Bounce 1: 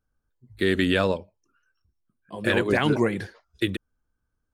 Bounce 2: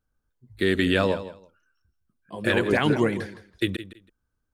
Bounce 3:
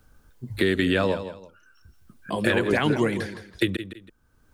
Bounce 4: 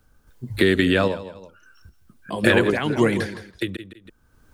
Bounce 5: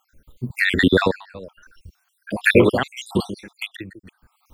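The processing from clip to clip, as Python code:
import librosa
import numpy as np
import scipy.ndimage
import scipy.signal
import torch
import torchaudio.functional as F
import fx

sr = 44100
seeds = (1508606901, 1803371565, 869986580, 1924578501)

y1 = fx.echo_feedback(x, sr, ms=164, feedback_pct=18, wet_db=-14)
y2 = fx.band_squash(y1, sr, depth_pct=70)
y3 = fx.tremolo_random(y2, sr, seeds[0], hz=3.7, depth_pct=65)
y3 = F.gain(torch.from_numpy(y3), 5.5).numpy()
y4 = fx.spec_dropout(y3, sr, seeds[1], share_pct=65)
y4 = F.gain(torch.from_numpy(y4), 6.5).numpy()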